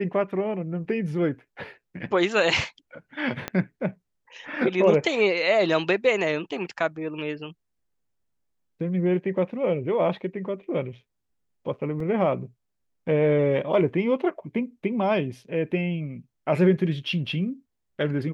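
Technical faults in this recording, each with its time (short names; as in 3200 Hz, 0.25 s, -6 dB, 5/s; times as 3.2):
3.48 pop -13 dBFS
12 gap 3.2 ms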